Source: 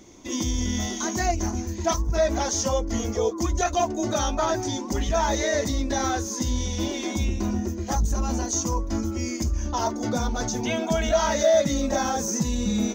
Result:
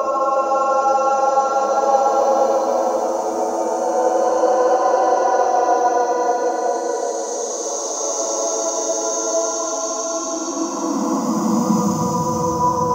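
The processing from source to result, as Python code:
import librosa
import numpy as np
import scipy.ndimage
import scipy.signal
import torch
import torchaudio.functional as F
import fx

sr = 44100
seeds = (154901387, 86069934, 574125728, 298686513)

y = fx.paulstretch(x, sr, seeds[0], factor=26.0, window_s=0.1, from_s=8.22)
y = fx.band_shelf(y, sr, hz=860.0, db=13.0, octaves=1.7)
y = fx.filter_sweep_highpass(y, sr, from_hz=460.0, to_hz=170.0, start_s=9.83, end_s=12.09, q=4.7)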